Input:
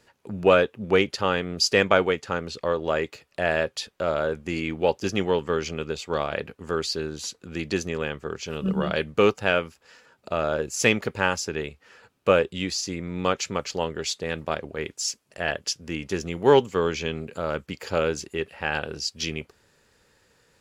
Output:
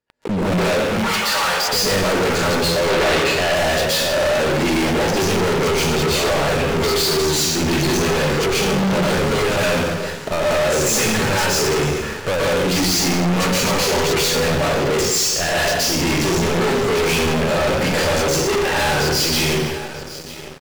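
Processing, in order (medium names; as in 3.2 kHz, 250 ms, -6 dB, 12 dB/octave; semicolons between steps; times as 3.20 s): compression 6:1, threshold -23 dBFS, peak gain reduction 11.5 dB; waveshaping leveller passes 3; treble shelf 5 kHz -7.5 dB; saturation -27.5 dBFS, distortion -6 dB; 0.84–1.69 s: high-pass 690 Hz 24 dB/octave; feedback delay 940 ms, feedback 54%, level -22 dB; plate-style reverb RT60 0.91 s, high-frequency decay 0.95×, pre-delay 110 ms, DRR -10 dB; waveshaping leveller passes 5; 2.90–3.54 s: peaking EQ 2.9 kHz +4.5 dB 2.7 oct; trim -7.5 dB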